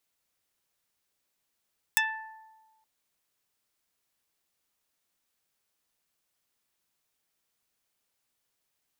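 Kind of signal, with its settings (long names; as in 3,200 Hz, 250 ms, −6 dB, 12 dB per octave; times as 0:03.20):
Karplus-Strong string A5, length 0.87 s, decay 1.39 s, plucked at 0.2, dark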